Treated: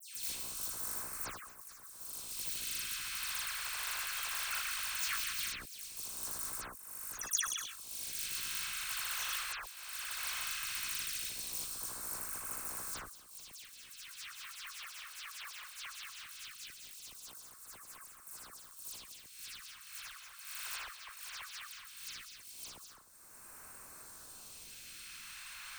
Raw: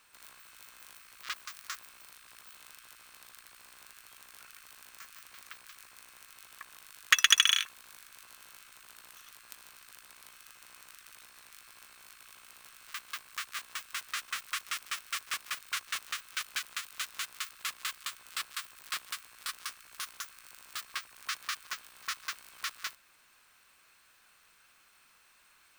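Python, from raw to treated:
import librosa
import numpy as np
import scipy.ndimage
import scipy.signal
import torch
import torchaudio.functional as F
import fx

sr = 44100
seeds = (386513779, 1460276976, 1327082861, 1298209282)

y = fx.auto_swell(x, sr, attack_ms=670.0)
y = fx.dispersion(y, sr, late='lows', ms=148.0, hz=2900.0)
y = fx.phaser_stages(y, sr, stages=2, low_hz=220.0, high_hz=3000.0, hz=0.18, feedback_pct=35)
y = fx.sustainer(y, sr, db_per_s=63.0)
y = y * 10.0 ** (15.0 / 20.0)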